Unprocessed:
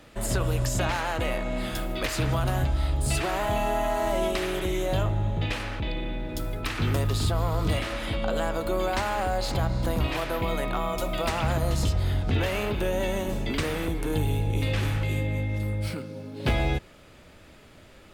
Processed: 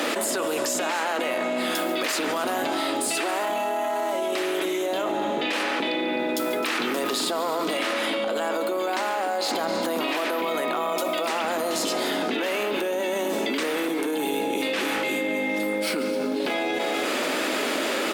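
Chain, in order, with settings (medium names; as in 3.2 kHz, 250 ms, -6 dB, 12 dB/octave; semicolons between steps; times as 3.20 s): steep high-pass 250 Hz 36 dB/octave; peak limiter -25.5 dBFS, peak gain reduction 11 dB; on a send: multi-tap echo 141/260 ms -17.5/-16.5 dB; on the sum: level flattener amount 100%; trim +5 dB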